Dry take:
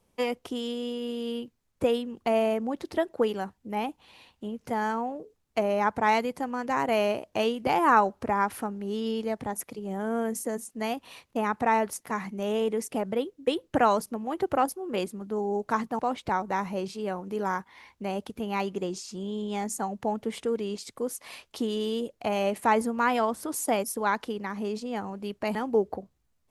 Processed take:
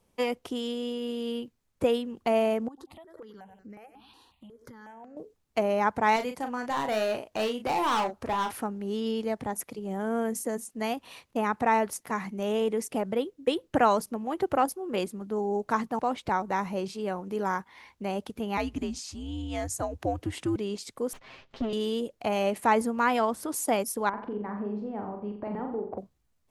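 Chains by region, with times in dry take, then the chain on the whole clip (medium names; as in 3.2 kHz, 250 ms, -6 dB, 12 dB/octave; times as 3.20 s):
2.68–5.17 s: feedback delay 94 ms, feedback 38%, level -18 dB + compression 8:1, threshold -41 dBFS + stepped phaser 5.5 Hz 600–3300 Hz
6.16–8.51 s: peaking EQ 250 Hz -4 dB 2.3 oct + overload inside the chain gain 24.5 dB + doubling 37 ms -7.5 dB
18.57–20.56 s: frequency shift -130 Hz + upward compressor, threshold -35 dBFS + high-pass 87 Hz
21.13–21.73 s: comb filter that takes the minimum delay 7.6 ms + upward compressor, threshold -43 dBFS + distance through air 220 m
24.09–25.98 s: low-pass 1 kHz + compression, threshold -30 dBFS + flutter echo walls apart 7.4 m, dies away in 0.54 s
whole clip: none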